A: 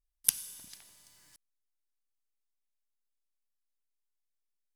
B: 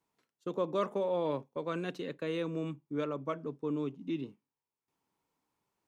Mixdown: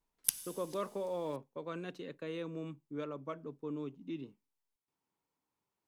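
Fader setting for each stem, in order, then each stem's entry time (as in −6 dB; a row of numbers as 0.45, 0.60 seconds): −5.0, −6.0 decibels; 0.00, 0.00 seconds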